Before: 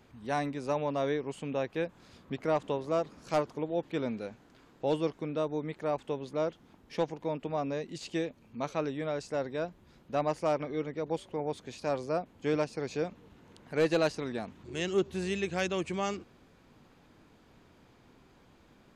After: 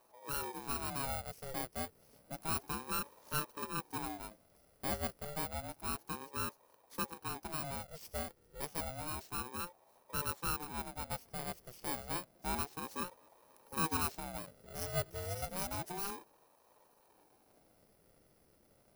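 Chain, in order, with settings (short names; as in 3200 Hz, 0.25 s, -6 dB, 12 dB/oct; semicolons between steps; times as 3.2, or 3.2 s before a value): FFT order left unsorted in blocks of 32 samples; ring modulator with a swept carrier 500 Hz, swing 50%, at 0.3 Hz; gain -5 dB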